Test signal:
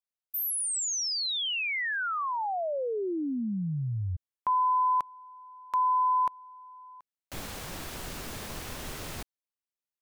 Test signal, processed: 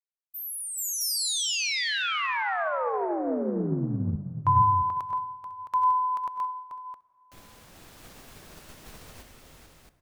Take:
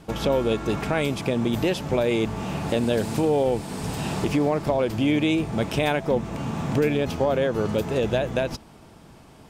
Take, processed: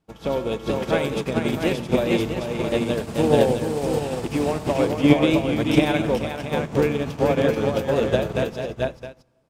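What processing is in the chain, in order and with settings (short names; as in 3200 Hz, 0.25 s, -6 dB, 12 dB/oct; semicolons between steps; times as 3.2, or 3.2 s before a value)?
tapped delay 85/98/169/435/501/664 ms -18.5/-12.5/-16.5/-3/-16/-3.5 dB; plate-style reverb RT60 2.9 s, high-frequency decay 0.5×, DRR 13 dB; upward expander 2.5:1, over -36 dBFS; gain +6 dB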